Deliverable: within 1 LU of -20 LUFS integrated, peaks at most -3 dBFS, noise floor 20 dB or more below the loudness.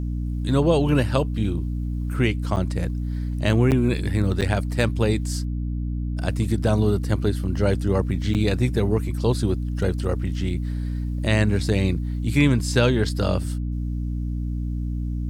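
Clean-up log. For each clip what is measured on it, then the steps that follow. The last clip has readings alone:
dropouts 4; longest dropout 8.4 ms; hum 60 Hz; harmonics up to 300 Hz; hum level -24 dBFS; loudness -23.5 LUFS; peak -6.0 dBFS; loudness target -20.0 LUFS
-> interpolate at 2.56/3.71/4.41/8.34, 8.4 ms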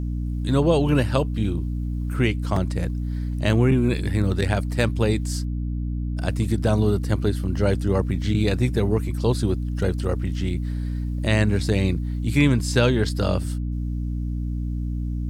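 dropouts 0; hum 60 Hz; harmonics up to 300 Hz; hum level -24 dBFS
-> notches 60/120/180/240/300 Hz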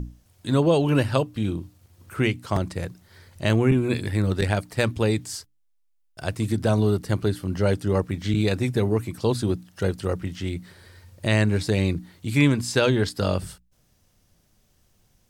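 hum none; loudness -24.0 LUFS; peak -5.5 dBFS; loudness target -20.0 LUFS
-> gain +4 dB; limiter -3 dBFS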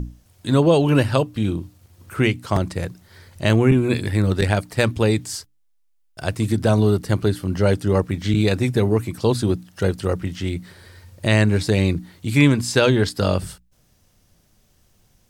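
loudness -20.0 LUFS; peak -3.0 dBFS; noise floor -61 dBFS

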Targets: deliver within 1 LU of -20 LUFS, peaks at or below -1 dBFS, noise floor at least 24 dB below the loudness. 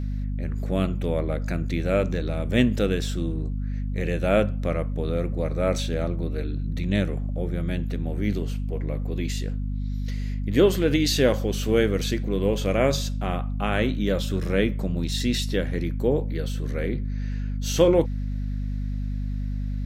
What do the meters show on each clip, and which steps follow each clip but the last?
hum 50 Hz; harmonics up to 250 Hz; hum level -25 dBFS; loudness -25.5 LUFS; peak -5.0 dBFS; loudness target -20.0 LUFS
-> de-hum 50 Hz, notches 5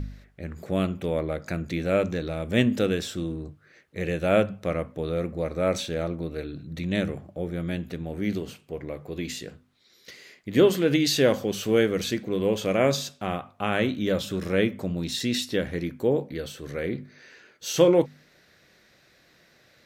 hum none; loudness -26.5 LUFS; peak -5.5 dBFS; loudness target -20.0 LUFS
-> gain +6.5 dB; limiter -1 dBFS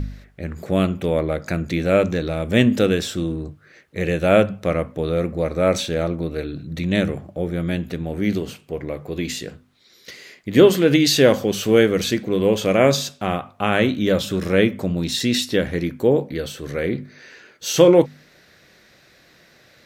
loudness -20.0 LUFS; peak -1.0 dBFS; noise floor -54 dBFS

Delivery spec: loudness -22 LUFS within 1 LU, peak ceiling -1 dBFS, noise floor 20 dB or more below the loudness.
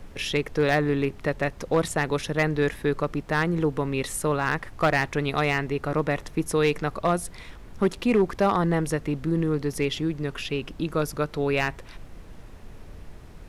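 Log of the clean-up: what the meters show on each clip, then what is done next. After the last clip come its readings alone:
clipped 0.4%; flat tops at -14.0 dBFS; noise floor -44 dBFS; noise floor target -46 dBFS; loudness -25.5 LUFS; peak -14.0 dBFS; loudness target -22.0 LUFS
-> clip repair -14 dBFS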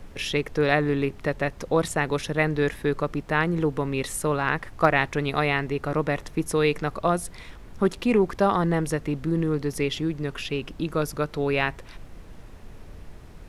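clipped 0.0%; noise floor -44 dBFS; noise floor target -46 dBFS
-> noise print and reduce 6 dB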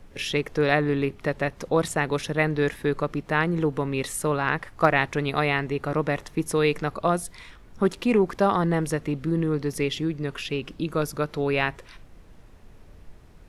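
noise floor -49 dBFS; loudness -25.5 LUFS; peak -5.0 dBFS; loudness target -22.0 LUFS
-> gain +3.5 dB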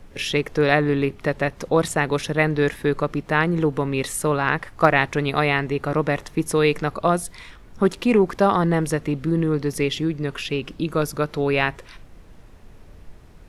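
loudness -22.0 LUFS; peak -1.5 dBFS; noise floor -46 dBFS

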